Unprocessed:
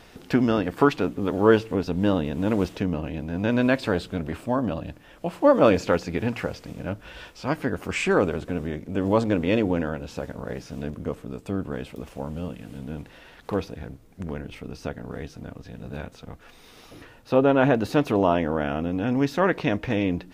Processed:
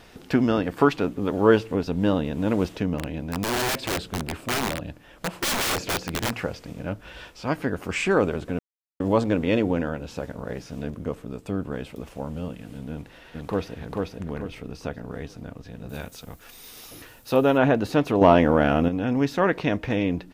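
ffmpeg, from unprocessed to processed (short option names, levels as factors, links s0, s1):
-filter_complex "[0:a]asplit=3[s0][s1][s2];[s0]afade=t=out:st=2.98:d=0.02[s3];[s1]aeval=exprs='(mod(10*val(0)+1,2)-1)/10':c=same,afade=t=in:st=2.98:d=0.02,afade=t=out:st=6.31:d=0.02[s4];[s2]afade=t=in:st=6.31:d=0.02[s5];[s3][s4][s5]amix=inputs=3:normalize=0,asplit=2[s6][s7];[s7]afade=t=in:st=12.9:d=0.01,afade=t=out:st=13.75:d=0.01,aecho=0:1:440|880|1320|1760|2200:0.794328|0.278015|0.0973052|0.0340568|0.0119199[s8];[s6][s8]amix=inputs=2:normalize=0,asettb=1/sr,asplit=3[s9][s10][s11];[s9]atrim=end=15.894[s12];[s10]atrim=start=15.89:end=17.58,asetpts=PTS-STARTPTS,afade=t=in:d=0.004:c=qsin,afade=t=out:st=1.686:d=0.004:c=qsin,aemphasis=mode=production:type=75fm[s13];[s11]atrim=start=17.576[s14];[s12][s13]acrossfade=d=0.004:c1=hsin:c2=qsin[s15];[s15][s14]acrossfade=d=0.004:c1=qsin:c2=hsin,asettb=1/sr,asplit=3[s16][s17][s18];[s16]atrim=end=18.214[s19];[s17]atrim=start=18.21:end=18.89,asetpts=PTS-STARTPTS,afade=t=in:d=0.004:c=qsin,afade=t=out:st=0.676:d=0.004:c=qsin,acontrast=73[s20];[s18]atrim=start=18.886[s21];[s19][s20]acrossfade=d=0.004:c1=hsin:c2=qsin[s22];[s22][s21]acrossfade=d=0.004:c1=qsin:c2=hsin,asplit=3[s23][s24][s25];[s23]atrim=end=8.59,asetpts=PTS-STARTPTS,afade=t=out:st=8.586:d=0.004:c=hsin[s26];[s24]atrim=start=8.59:end=9,asetpts=PTS-STARTPTS,volume=0[s27];[s25]atrim=start=9,asetpts=PTS-STARTPTS,afade=t=in:d=0.004:c=hsin[s28];[s26][s27][s28]concat=n=3:v=0:a=1"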